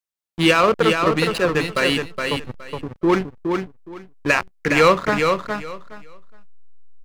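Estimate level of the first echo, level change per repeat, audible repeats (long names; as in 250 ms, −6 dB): −5.0 dB, −14.5 dB, 3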